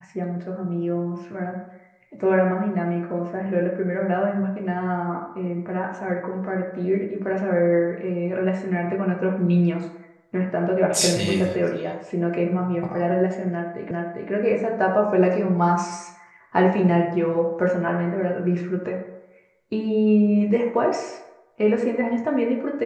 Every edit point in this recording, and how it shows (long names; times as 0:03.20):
0:13.91: the same again, the last 0.4 s